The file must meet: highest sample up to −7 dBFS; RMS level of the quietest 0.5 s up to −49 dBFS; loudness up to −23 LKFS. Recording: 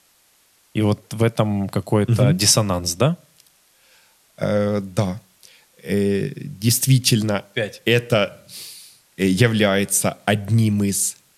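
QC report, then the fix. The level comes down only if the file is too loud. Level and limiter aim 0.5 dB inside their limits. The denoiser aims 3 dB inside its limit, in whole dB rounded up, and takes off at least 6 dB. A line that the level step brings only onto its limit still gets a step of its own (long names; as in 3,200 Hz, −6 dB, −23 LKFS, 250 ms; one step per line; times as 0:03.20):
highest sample −3.0 dBFS: out of spec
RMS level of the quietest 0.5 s −58 dBFS: in spec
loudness −19.5 LKFS: out of spec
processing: level −4 dB
brickwall limiter −7.5 dBFS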